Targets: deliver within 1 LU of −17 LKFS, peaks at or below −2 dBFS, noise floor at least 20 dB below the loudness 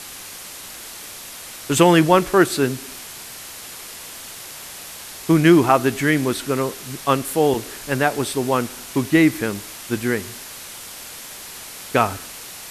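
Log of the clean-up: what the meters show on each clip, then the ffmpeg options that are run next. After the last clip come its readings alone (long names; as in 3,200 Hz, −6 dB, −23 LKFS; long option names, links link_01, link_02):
background noise floor −37 dBFS; target noise floor −39 dBFS; integrated loudness −19.0 LKFS; sample peak −1.0 dBFS; target loudness −17.0 LKFS
→ -af "afftdn=noise_reduction=6:noise_floor=-37"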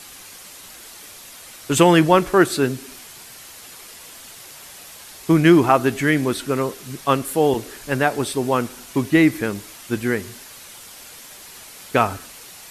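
background noise floor −41 dBFS; integrated loudness −19.0 LKFS; sample peak −1.0 dBFS; target loudness −17.0 LKFS
→ -af "volume=2dB,alimiter=limit=-2dB:level=0:latency=1"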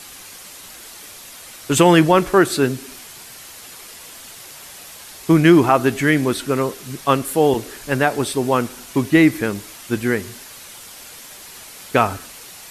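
integrated loudness −17.5 LKFS; sample peak −2.0 dBFS; background noise floor −39 dBFS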